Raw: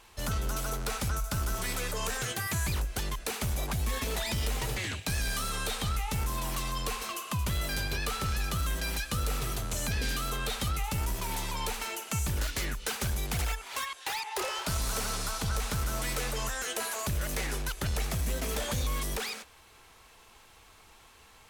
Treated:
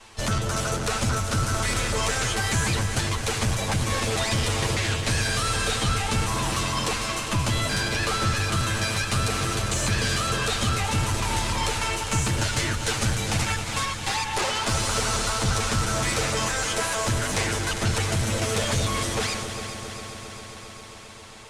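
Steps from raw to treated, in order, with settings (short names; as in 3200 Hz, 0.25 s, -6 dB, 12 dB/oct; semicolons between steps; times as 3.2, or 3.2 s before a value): minimum comb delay 9 ms; LPF 9500 Hz 24 dB/oct; in parallel at -11.5 dB: soft clip -39.5 dBFS, distortion -8 dB; on the sum: multi-head echo 0.134 s, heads second and third, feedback 73%, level -11 dB; gain +8 dB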